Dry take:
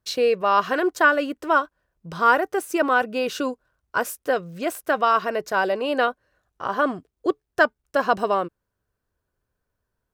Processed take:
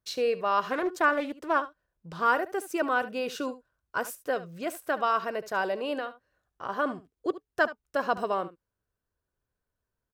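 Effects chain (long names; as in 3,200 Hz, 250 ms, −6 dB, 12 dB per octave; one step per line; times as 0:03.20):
0:05.97–0:06.69: downward compressor 6 to 1, threshold −24 dBFS, peak gain reduction 8.5 dB
single-tap delay 72 ms −15.5 dB
0:00.70–0:02.25: highs frequency-modulated by the lows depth 0.17 ms
level −7 dB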